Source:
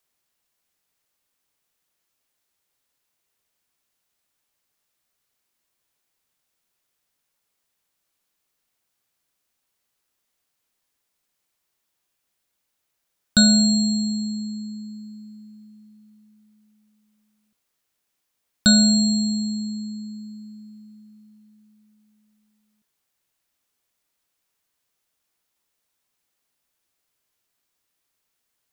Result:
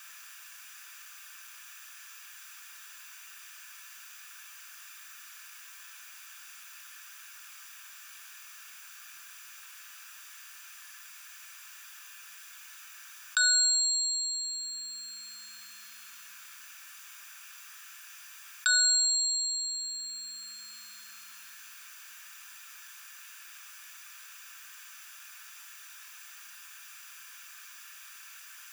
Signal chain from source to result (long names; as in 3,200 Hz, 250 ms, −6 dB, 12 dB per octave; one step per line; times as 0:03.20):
high-pass filter 1,300 Hz 24 dB per octave
parametric band 4,100 Hz −7 dB 1.3 octaves
brickwall limiter −21 dBFS, peak gain reduction 9.5 dB
convolution reverb RT60 0.50 s, pre-delay 3 ms, DRR 5.5 dB
envelope flattener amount 50%
level +2 dB